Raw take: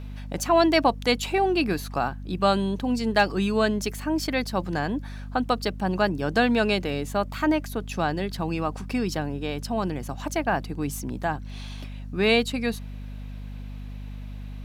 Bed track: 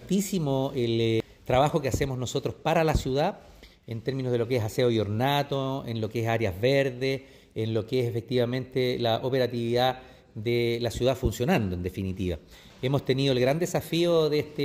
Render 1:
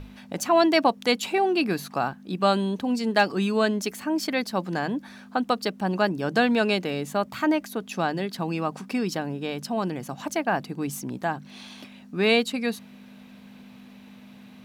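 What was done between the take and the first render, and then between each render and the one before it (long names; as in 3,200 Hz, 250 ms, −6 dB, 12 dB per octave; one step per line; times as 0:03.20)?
mains-hum notches 50/100/150 Hz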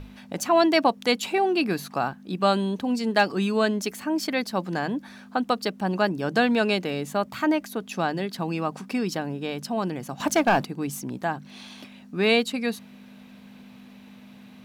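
0:10.20–0:10.65: leveller curve on the samples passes 2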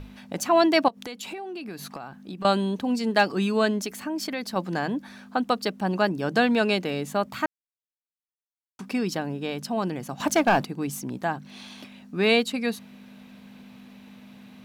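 0:00.88–0:02.45: downward compressor 16 to 1, threshold −32 dBFS
0:03.83–0:04.56: downward compressor 3 to 1, threshold −27 dBFS
0:07.46–0:08.79: silence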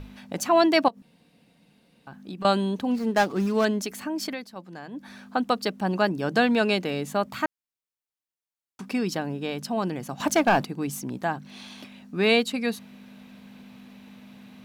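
0:01.02–0:02.07: fill with room tone
0:02.91–0:03.65: running median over 15 samples
0:04.29–0:05.10: duck −13 dB, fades 0.19 s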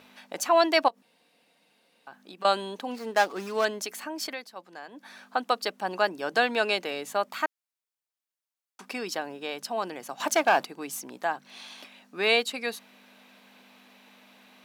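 high-pass filter 500 Hz 12 dB per octave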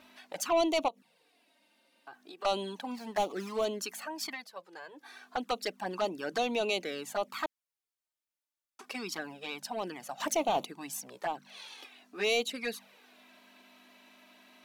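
soft clipping −19.5 dBFS, distortion −11 dB
flanger swept by the level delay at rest 3.4 ms, full sweep at −25.5 dBFS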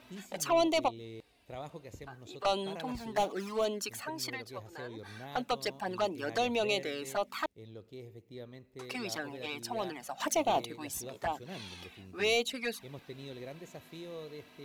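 mix in bed track −21.5 dB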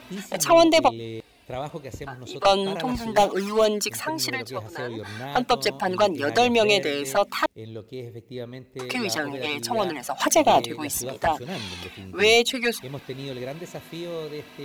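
level +11.5 dB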